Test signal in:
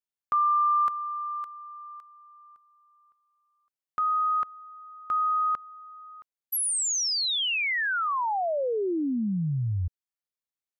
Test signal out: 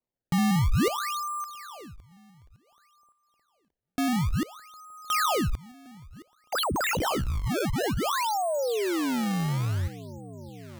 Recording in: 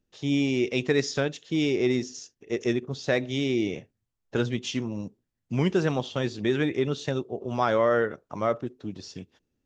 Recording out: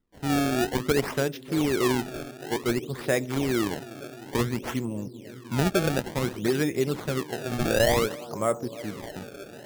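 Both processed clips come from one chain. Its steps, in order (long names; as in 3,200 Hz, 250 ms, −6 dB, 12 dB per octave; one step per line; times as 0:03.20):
bucket-brigade delay 307 ms, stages 2,048, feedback 85%, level −18 dB
sample-and-hold swept by an LFO 25×, swing 160% 0.56 Hz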